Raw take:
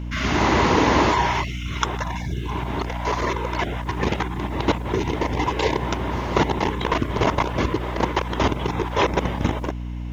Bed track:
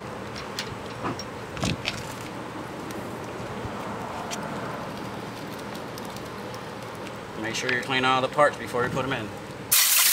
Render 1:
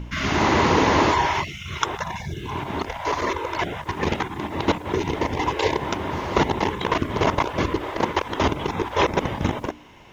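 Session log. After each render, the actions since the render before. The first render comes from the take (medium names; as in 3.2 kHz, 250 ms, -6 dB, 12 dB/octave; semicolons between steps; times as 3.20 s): de-hum 60 Hz, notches 5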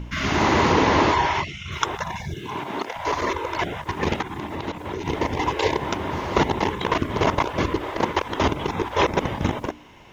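0.72–1.72 s: low-pass 6.5 kHz; 2.34–2.95 s: high-pass 120 Hz -> 300 Hz; 4.21–5.06 s: compression 4:1, threshold -26 dBFS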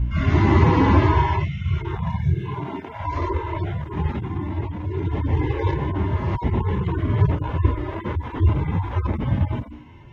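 harmonic-percussive separation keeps harmonic; tone controls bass +14 dB, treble -13 dB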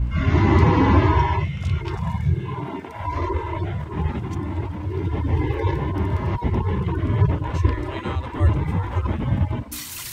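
add bed track -14.5 dB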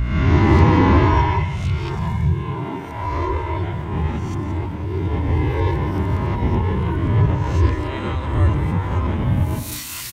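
reverse spectral sustain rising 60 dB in 0.79 s; delay 173 ms -11 dB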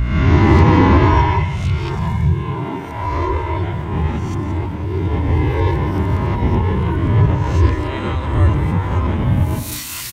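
trim +3 dB; peak limiter -1 dBFS, peak gain reduction 2 dB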